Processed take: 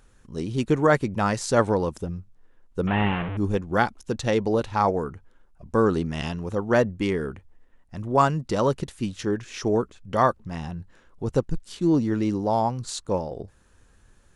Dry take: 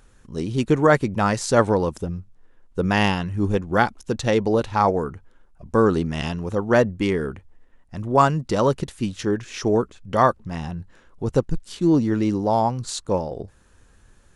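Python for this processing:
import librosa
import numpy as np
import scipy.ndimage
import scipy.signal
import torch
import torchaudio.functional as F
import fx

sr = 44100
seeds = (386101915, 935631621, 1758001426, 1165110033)

y = fx.delta_mod(x, sr, bps=16000, step_db=-21.0, at=(2.87, 3.37))
y = F.gain(torch.from_numpy(y), -3.0).numpy()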